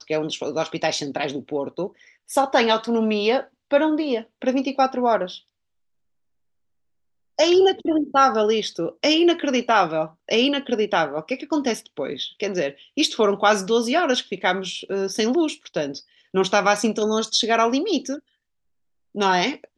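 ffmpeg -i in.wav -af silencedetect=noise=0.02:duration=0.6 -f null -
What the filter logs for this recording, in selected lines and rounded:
silence_start: 5.37
silence_end: 7.39 | silence_duration: 2.02
silence_start: 18.18
silence_end: 19.15 | silence_duration: 0.97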